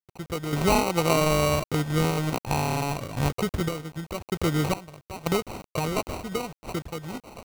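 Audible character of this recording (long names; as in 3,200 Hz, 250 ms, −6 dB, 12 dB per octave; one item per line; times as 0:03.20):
a quantiser's noise floor 6 bits, dither none
sample-and-hold tremolo 1.9 Hz, depth 85%
aliases and images of a low sample rate 1,700 Hz, jitter 0%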